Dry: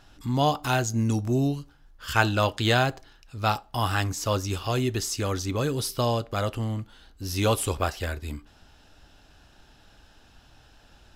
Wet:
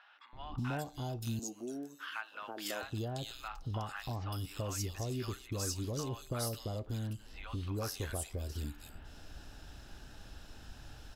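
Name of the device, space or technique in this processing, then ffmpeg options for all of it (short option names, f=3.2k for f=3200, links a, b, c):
ASMR close-microphone chain: -filter_complex "[0:a]lowshelf=f=120:g=4,acompressor=threshold=-39dB:ratio=5,highshelf=f=10k:g=4,asettb=1/sr,asplit=3[a][b][c];[a]atrim=end=1.064[d];[b]atrim=start=1.06:end=2.5,asetpts=PTS-STARTPTS,afade=t=in:d=0.004:c=qsin,afade=t=out:st=1.436:d=0.004:c=qsin,highpass=f=260:w=0.5412,highpass=f=260:w=1.3066[e];[c]atrim=start=2.496[f];[d][e]acrossfade=d=0.004:c1=hsin:c2=qsin[g];[g][f]acrossfade=d=0.004:c1=qsin:c2=hsin,acrossover=split=880|3000[h][i][j];[h]adelay=330[k];[j]adelay=580[l];[k][i][l]amix=inputs=3:normalize=0,volume=2.5dB"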